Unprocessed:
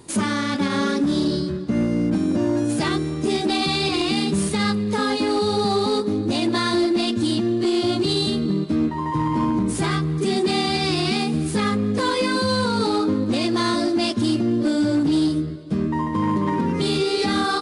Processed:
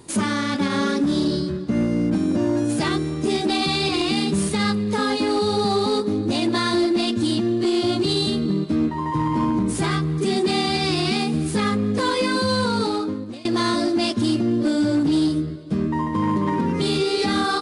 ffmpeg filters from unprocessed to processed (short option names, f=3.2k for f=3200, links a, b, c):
-filter_complex "[0:a]asplit=2[a][b];[a]atrim=end=13.45,asetpts=PTS-STARTPTS,afade=t=out:st=12.74:d=0.71:silence=0.0749894[c];[b]atrim=start=13.45,asetpts=PTS-STARTPTS,afade=t=in:d=0.004:c=hsin:silence=0.0749894[d];[c][d]concat=n=2:v=0:a=1"